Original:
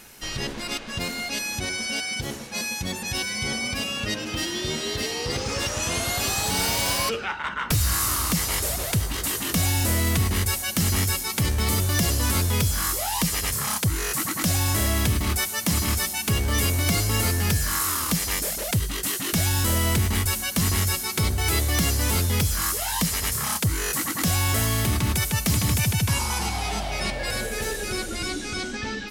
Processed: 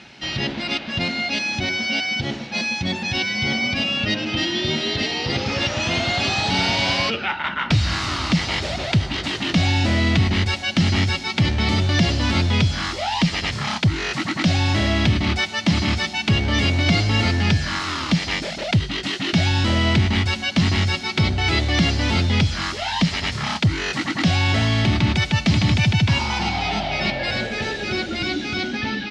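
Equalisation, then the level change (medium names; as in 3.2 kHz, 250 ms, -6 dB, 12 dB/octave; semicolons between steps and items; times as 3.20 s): cabinet simulation 100–4300 Hz, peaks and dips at 460 Hz -10 dB, 1.1 kHz -8 dB, 1.6 kHz -4 dB; +8.0 dB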